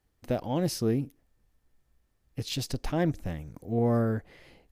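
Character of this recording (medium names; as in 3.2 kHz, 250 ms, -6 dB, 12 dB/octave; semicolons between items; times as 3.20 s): noise floor -74 dBFS; spectral tilt -6.5 dB/octave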